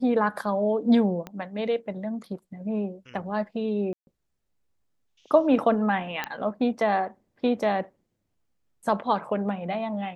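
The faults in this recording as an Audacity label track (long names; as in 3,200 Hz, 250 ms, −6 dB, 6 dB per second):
1.270000	1.270000	click −22 dBFS
3.930000	4.070000	drop-out 141 ms
6.240000	6.240000	click −14 dBFS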